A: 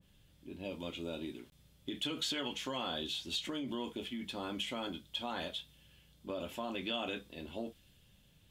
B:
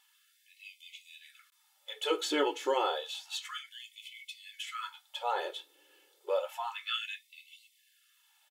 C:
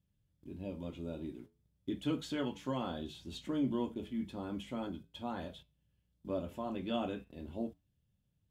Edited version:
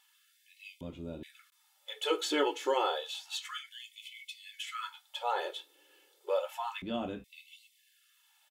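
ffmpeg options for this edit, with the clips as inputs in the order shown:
-filter_complex "[2:a]asplit=2[s0][s1];[1:a]asplit=3[s2][s3][s4];[s2]atrim=end=0.812[s5];[s0]atrim=start=0.808:end=1.232[s6];[s3]atrim=start=1.228:end=6.822[s7];[s1]atrim=start=6.818:end=7.242[s8];[s4]atrim=start=7.238[s9];[s5][s6]acrossfade=d=0.004:c1=hsin:c2=hsin[s10];[s10][s7]acrossfade=d=0.004:c1=hsin:c2=hsin[s11];[s11][s8]acrossfade=d=0.004:c1=hsin:c2=hsin[s12];[s12][s9]acrossfade=d=0.004:c1=hsin:c2=hsin"

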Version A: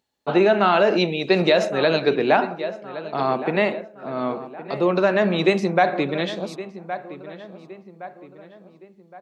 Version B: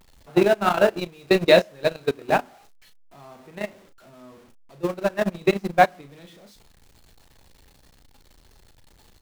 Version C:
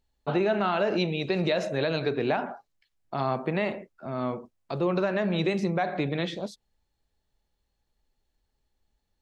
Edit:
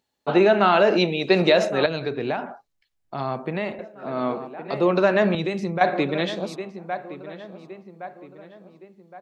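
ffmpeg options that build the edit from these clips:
-filter_complex "[2:a]asplit=2[s0][s1];[0:a]asplit=3[s2][s3][s4];[s2]atrim=end=1.862[s5];[s0]atrim=start=1.858:end=3.792[s6];[s3]atrim=start=3.788:end=5.352[s7];[s1]atrim=start=5.348:end=5.812[s8];[s4]atrim=start=5.808[s9];[s5][s6]acrossfade=d=0.004:c1=hsin:c2=hsin[s10];[s10][s7]acrossfade=d=0.004:c1=hsin:c2=hsin[s11];[s11][s8]acrossfade=d=0.004:c1=hsin:c2=hsin[s12];[s12][s9]acrossfade=d=0.004:c1=hsin:c2=hsin"

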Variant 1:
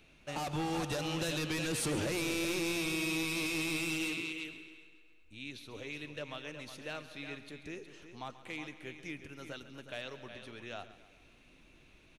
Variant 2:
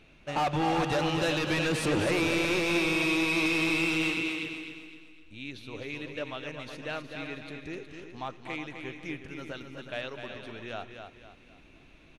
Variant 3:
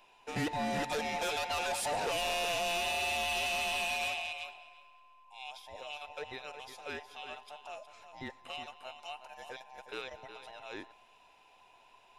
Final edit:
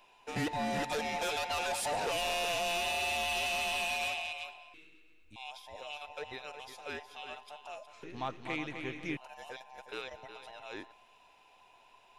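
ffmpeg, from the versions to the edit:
-filter_complex "[2:a]asplit=3[s0][s1][s2];[s0]atrim=end=4.742[s3];[0:a]atrim=start=4.738:end=5.362[s4];[s1]atrim=start=5.358:end=8.032[s5];[1:a]atrim=start=8.028:end=9.172[s6];[s2]atrim=start=9.168[s7];[s3][s4]acrossfade=d=0.004:c1=hsin:c2=hsin[s8];[s8][s5]acrossfade=d=0.004:c1=hsin:c2=hsin[s9];[s9][s6]acrossfade=d=0.004:c1=hsin:c2=hsin[s10];[s10][s7]acrossfade=d=0.004:c1=hsin:c2=hsin"

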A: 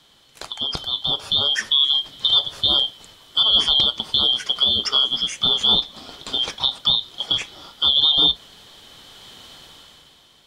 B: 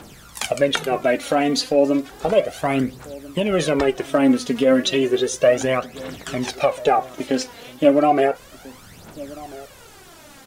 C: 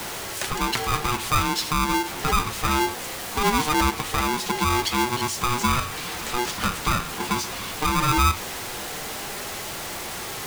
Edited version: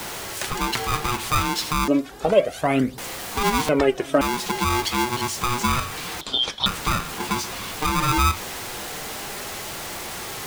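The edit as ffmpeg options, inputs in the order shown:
-filter_complex "[1:a]asplit=2[s0][s1];[2:a]asplit=4[s2][s3][s4][s5];[s2]atrim=end=1.882[s6];[s0]atrim=start=1.878:end=2.982[s7];[s3]atrim=start=2.978:end=3.692[s8];[s1]atrim=start=3.688:end=4.212[s9];[s4]atrim=start=4.208:end=6.212[s10];[0:a]atrim=start=6.208:end=6.662[s11];[s5]atrim=start=6.658[s12];[s6][s7]acrossfade=d=0.004:c1=hsin:c2=hsin[s13];[s13][s8]acrossfade=d=0.004:c1=hsin:c2=hsin[s14];[s14][s9]acrossfade=d=0.004:c1=hsin:c2=hsin[s15];[s15][s10]acrossfade=d=0.004:c1=hsin:c2=hsin[s16];[s16][s11]acrossfade=d=0.004:c1=hsin:c2=hsin[s17];[s17][s12]acrossfade=d=0.004:c1=hsin:c2=hsin"

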